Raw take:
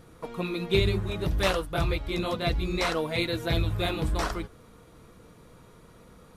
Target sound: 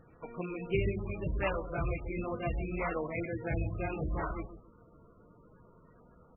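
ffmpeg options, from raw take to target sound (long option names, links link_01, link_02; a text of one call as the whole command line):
ffmpeg -i in.wav -filter_complex "[0:a]asettb=1/sr,asplit=3[link_01][link_02][link_03];[link_01]atrim=end=1.834[link_04];[link_02]atrim=start=1.83:end=2.57,asetpts=PTS-STARTPTS,afade=type=in:duration=0.004:curve=qsin,afade=type=out:start_time=0.736:duration=0.004:curve=qsin,highshelf=frequency=4400:gain=-5.5[link_05];[link_03]atrim=start=2.566[link_06];[link_04][link_05]acrossfade=duration=0.004:curve1=hsin:curve2=qsin[link_07];[link_07][link_06]acrossfade=duration=0.004:curve1=qsin:curve2=hsin,asplit=2[link_08][link_09];[link_09]adelay=138,lowpass=frequency=850:poles=1,volume=-9dB,asplit=2[link_10][link_11];[link_11]adelay=138,lowpass=frequency=850:poles=1,volume=0.24,asplit=2[link_12][link_13];[link_13]adelay=138,lowpass=frequency=850:poles=1,volume=0.24[link_14];[link_10][link_12][link_14]amix=inputs=3:normalize=0[link_15];[link_08][link_15]amix=inputs=2:normalize=0,volume=-6.5dB" -ar 22050 -c:a libmp3lame -b:a 8k out.mp3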